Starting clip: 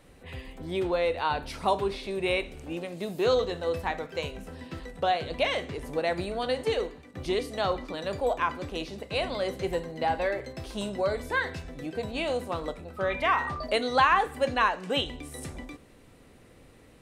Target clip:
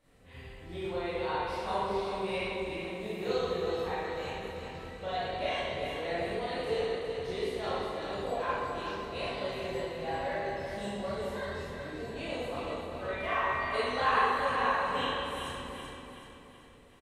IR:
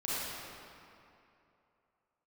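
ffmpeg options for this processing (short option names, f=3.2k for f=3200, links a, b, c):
-filter_complex "[0:a]asettb=1/sr,asplit=3[a][b][c];[a]atrim=end=11.084[d];[b]atrim=start=11.08:end=12.21,asetpts=PTS-STARTPTS,afade=t=in:d=0.004:c=qsin,afade=t=out:st=1.126:d=0.004:c=qsin,acrossover=split=410|3000[e][f][g];[f]acompressor=threshold=-35dB:ratio=6[h];[e][h][g]amix=inputs=3:normalize=0[i];[c]atrim=start=12.206[j];[d][i]acrossfade=d=0.004:c1=hsin:c2=qsin[k];[k][j]acrossfade=d=0.004:c1=qsin:c2=hsin,aecho=1:1:379|758|1137|1516|1895|2274:0.473|0.222|0.105|0.0491|0.0231|0.0109[l];[1:a]atrim=start_sample=2205,asetrate=70560,aresample=44100[m];[l][m]afir=irnorm=-1:irlink=0,volume=-7.5dB"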